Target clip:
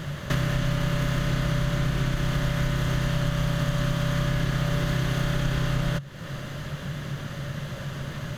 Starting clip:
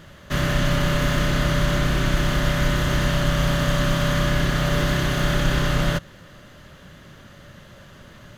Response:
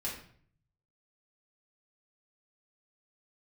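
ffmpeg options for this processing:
-af "equalizer=f=140:w=6:g=13.5,acompressor=threshold=0.02:ratio=4,volume=2.66"

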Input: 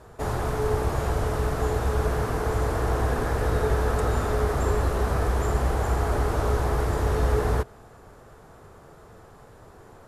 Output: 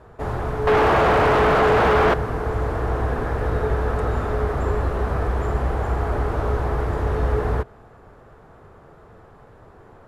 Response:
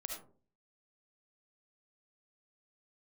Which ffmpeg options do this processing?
-filter_complex "[0:a]asettb=1/sr,asplit=3[s0][s1][s2];[s0]atrim=end=0.674[s3];[s1]atrim=start=0.67:end=2.14,asetpts=PTS-STARTPTS,afade=t=in:d=0.004:c=qsin,afade=t=out:st=1.466:d=0.004:c=qsin,asplit=2[s4][s5];[s5]highpass=f=720:p=1,volume=89.1,asoftclip=type=tanh:threshold=0.299[s6];[s4][s6]amix=inputs=2:normalize=0,lowpass=f=2000:p=1,volume=0.501[s7];[s2]atrim=start=2.136[s8];[s3][s7]acrossfade=d=0.004:c1=hsin:c2=qsin[s9];[s9][s8]acrossfade=d=0.004:c1=qsin:c2=hsin,bass=f=250:g=0,treble=f=4000:g=-14,volume=1.19"

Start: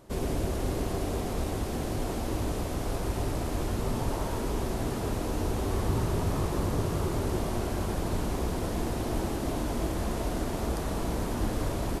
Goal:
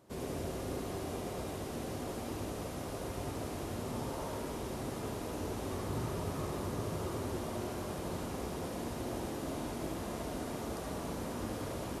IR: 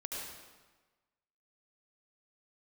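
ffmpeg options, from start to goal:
-filter_complex "[0:a]highpass=90[s0];[1:a]atrim=start_sample=2205,atrim=end_sample=3969[s1];[s0][s1]afir=irnorm=-1:irlink=0,volume=0.668"

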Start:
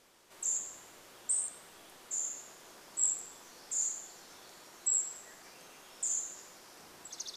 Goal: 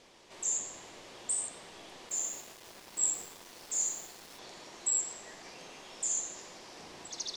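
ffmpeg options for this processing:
-filter_complex "[0:a]lowpass=5800,equalizer=f=1400:t=o:w=0.51:g=-7,asettb=1/sr,asplit=3[s0][s1][s2];[s0]atrim=end=2.094[s3];[s1]atrim=start=2.09:end=4.39,asetpts=PTS-STARTPTS,afade=t=in:d=0.004:c=qsin,afade=t=out:st=2.296:d=0.004:c=qsin,aeval=exprs='val(0)*gte(abs(val(0)),0.00211)':c=same[s4];[s2]atrim=start=4.386[s5];[s3][s4]acrossfade=d=0.004:c1=hsin:c2=qsin[s6];[s6][s5]acrossfade=d=0.004:c1=qsin:c2=hsin,volume=2.24"

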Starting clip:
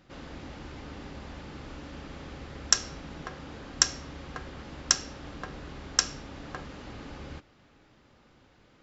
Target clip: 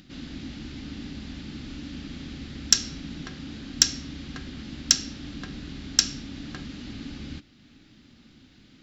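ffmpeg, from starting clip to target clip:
-af "asoftclip=type=tanh:threshold=0.473,acompressor=mode=upward:threshold=0.00224:ratio=2.5,equalizer=f=250:t=o:w=1:g=10,equalizer=f=500:t=o:w=1:g=-11,equalizer=f=1000:t=o:w=1:g=-10,equalizer=f=4000:t=o:w=1:g=7,volume=1.33"

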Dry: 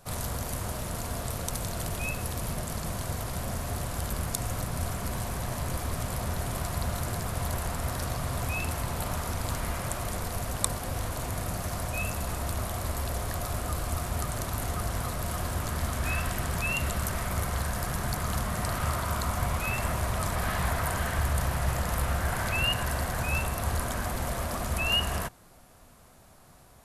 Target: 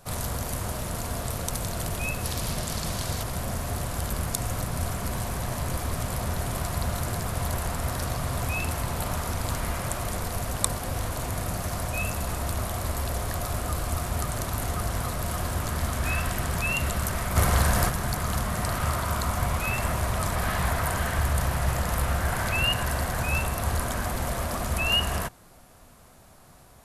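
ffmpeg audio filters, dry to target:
-filter_complex "[0:a]asettb=1/sr,asplit=3[s0][s1][s2];[s0]atrim=end=2.244[s3];[s1]atrim=start=2.24:end=3.23,asetpts=PTS-STARTPTS,afade=t=in:d=0.004:c=qsin,afade=t=out:st=0.986:d=0.004:c=qsin,equalizer=f=4400:w=0.89:g=7[s4];[s2]atrim=start=3.226[s5];[s3][s4]acrossfade=d=0.004:c1=hsin:c2=qsin[s6];[s6][s5]acrossfade=d=0.004:c1=qsin:c2=hsin,asplit=3[s7][s8][s9];[s7]afade=t=out:st=17.35:d=0.02[s10];[s8]acontrast=59,afade=t=in:st=17.35:d=0.02,afade=t=out:st=17.88:d=0.02[s11];[s9]afade=t=in:st=17.88:d=0.02[s12];[s10][s11][s12]amix=inputs=3:normalize=0,volume=1.33"

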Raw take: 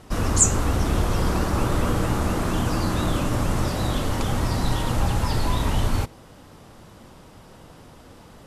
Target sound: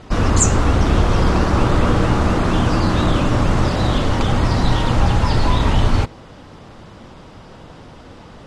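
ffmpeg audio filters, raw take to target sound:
-af "lowpass=5000,volume=2.24" -ar 48000 -c:a mp2 -b:a 64k

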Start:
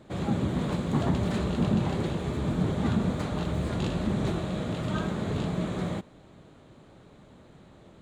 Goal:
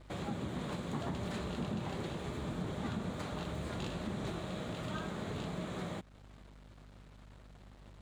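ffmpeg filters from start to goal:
-filter_complex "[0:a]acrossover=split=110[s0][s1];[s1]aeval=exprs='sgn(val(0))*max(abs(val(0))-0.00188,0)':c=same[s2];[s0][s2]amix=inputs=2:normalize=0,aeval=exprs='val(0)+0.00282*(sin(2*PI*50*n/s)+sin(2*PI*2*50*n/s)/2+sin(2*PI*3*50*n/s)/3+sin(2*PI*4*50*n/s)/4+sin(2*PI*5*50*n/s)/5)':c=same,lowshelf=f=470:g=-6.5,acompressor=threshold=0.00631:ratio=2,volume=1.26"

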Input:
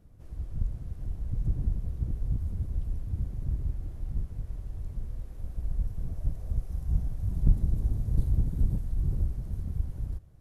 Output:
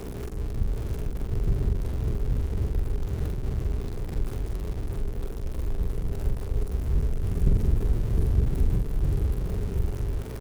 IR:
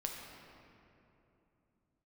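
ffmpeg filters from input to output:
-filter_complex "[0:a]aeval=exprs='val(0)+0.5*0.02*sgn(val(0))':c=same,equalizer=f=410:t=o:w=0.37:g=13,asplit=2[s0][s1];[s1]adelay=45,volume=0.75[s2];[s0][s2]amix=inputs=2:normalize=0,aeval=exprs='val(0)+0.0126*(sin(2*PI*60*n/s)+sin(2*PI*2*60*n/s)/2+sin(2*PI*3*60*n/s)/3+sin(2*PI*4*60*n/s)/4+sin(2*PI*5*60*n/s)/5)':c=same"

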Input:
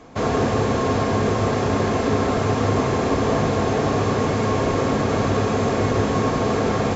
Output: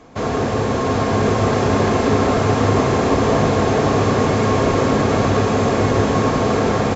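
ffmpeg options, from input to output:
-filter_complex "[0:a]asplit=7[s0][s1][s2][s3][s4][s5][s6];[s1]adelay=116,afreqshift=150,volume=0.15[s7];[s2]adelay=232,afreqshift=300,volume=0.0923[s8];[s3]adelay=348,afreqshift=450,volume=0.0575[s9];[s4]adelay=464,afreqshift=600,volume=0.0355[s10];[s5]adelay=580,afreqshift=750,volume=0.0221[s11];[s6]adelay=696,afreqshift=900,volume=0.0136[s12];[s0][s7][s8][s9][s10][s11][s12]amix=inputs=7:normalize=0,dynaudnorm=f=410:g=5:m=1.78"

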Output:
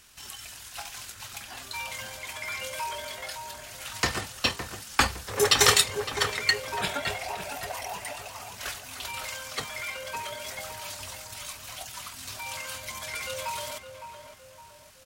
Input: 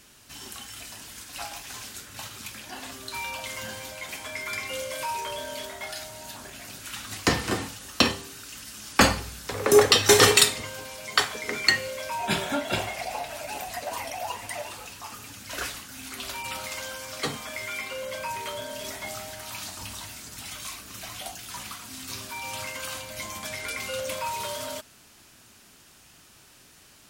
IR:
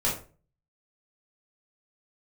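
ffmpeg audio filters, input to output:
-filter_complex "[0:a]equalizer=f=280:t=o:w=1.7:g=-10,atempo=1.8,asplit=2[s0][s1];[s1]adelay=561,lowpass=f=1500:p=1,volume=0.422,asplit=2[s2][s3];[s3]adelay=561,lowpass=f=1500:p=1,volume=0.48,asplit=2[s4][s5];[s5]adelay=561,lowpass=f=1500:p=1,volume=0.48,asplit=2[s6][s7];[s7]adelay=561,lowpass=f=1500:p=1,volume=0.48,asplit=2[s8][s9];[s9]adelay=561,lowpass=f=1500:p=1,volume=0.48,asplit=2[s10][s11];[s11]adelay=561,lowpass=f=1500:p=1,volume=0.48[s12];[s2][s4][s6][s8][s10][s12]amix=inputs=6:normalize=0[s13];[s0][s13]amix=inputs=2:normalize=0"

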